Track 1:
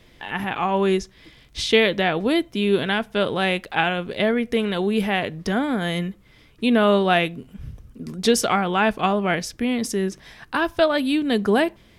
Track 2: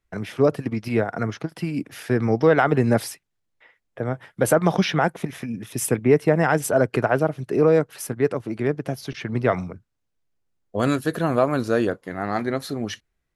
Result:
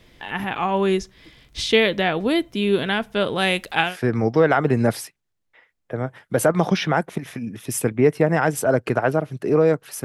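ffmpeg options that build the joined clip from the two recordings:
-filter_complex "[0:a]asettb=1/sr,asplit=3[a][b][c];[a]atrim=end=3.384[d];[b]atrim=start=3.38:end=3.97,asetpts=PTS-STARTPTS,afade=t=in:d=0.004:c=qsin,afade=t=out:st=0.586:d=0.004:c=qsin,equalizer=f=10k:t=o:w=2.3:g=8.5[e];[c]atrim=start=3.966[f];[d][e]acrossfade=d=0.004:c1=hsin:c2=qsin[g];[g][f]acrossfade=d=0.004:c1=qsin:c2=hsin,apad=whole_dur=10.04,atrim=end=10.04,atrim=end=3.97,asetpts=PTS-STARTPTS[h];[1:a]atrim=start=1.88:end=8.11,asetpts=PTS-STARTPTS[i];[h][i]acrossfade=d=0.16:c1=tri:c2=tri"

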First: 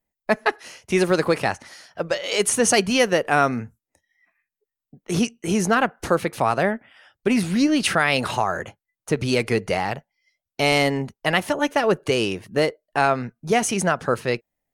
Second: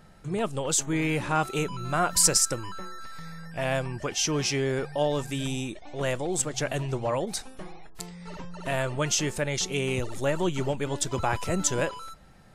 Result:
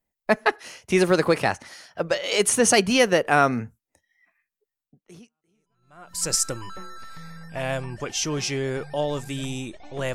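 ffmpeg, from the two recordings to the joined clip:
-filter_complex "[0:a]apad=whole_dur=10.14,atrim=end=10.14,atrim=end=6.33,asetpts=PTS-STARTPTS[a];[1:a]atrim=start=0.81:end=6.16,asetpts=PTS-STARTPTS[b];[a][b]acrossfade=d=1.54:c1=exp:c2=exp"

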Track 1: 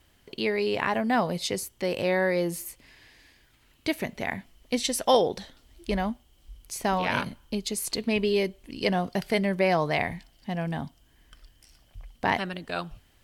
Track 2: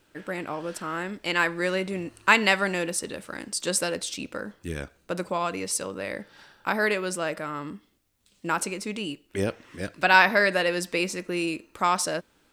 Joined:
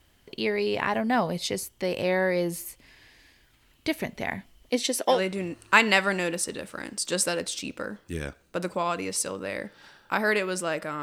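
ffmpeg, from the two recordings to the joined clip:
-filter_complex "[0:a]asettb=1/sr,asplit=3[a][b][c];[a]atrim=end=4.694[d];[b]atrim=start=4.69:end=5.21,asetpts=PTS-STARTPTS,afade=t=in:d=0.004:c=qsin,afade=t=out:st=0.516:d=0.004:c=qsin,highpass=f=330:t=q:w=1.8[e];[c]atrim=start=5.206[f];[d][e]acrossfade=d=0.004:c1=hsin:c2=qsin[g];[g][f]acrossfade=d=0.004:c1=qsin:c2=hsin,apad=whole_dur=11.02,atrim=end=11.02,atrim=end=5.21,asetpts=PTS-STARTPTS[h];[1:a]atrim=start=1.62:end=7.57,asetpts=PTS-STARTPTS[i];[h][i]acrossfade=d=0.14:c1=tri:c2=tri"

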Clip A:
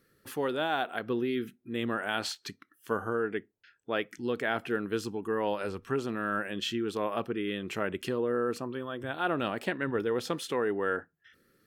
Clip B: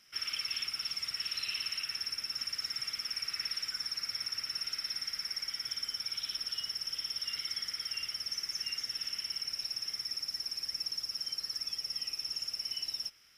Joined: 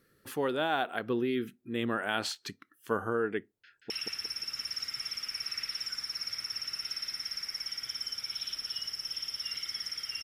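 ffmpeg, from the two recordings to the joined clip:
-filter_complex "[0:a]apad=whole_dur=10.23,atrim=end=10.23,atrim=end=3.902[a];[1:a]atrim=start=1.718:end=8.05[b];[a][b]acrossfade=d=0.004:c1=hsin:c2=hsin,asplit=2[c][d];[d]afade=t=in:st=3.54:d=0.01,afade=t=out:st=3.9:d=0.01,aecho=0:1:180|360|540|720|900:0.668344|0.23392|0.0818721|0.0286552|0.0100293[e];[c][e]amix=inputs=2:normalize=0"

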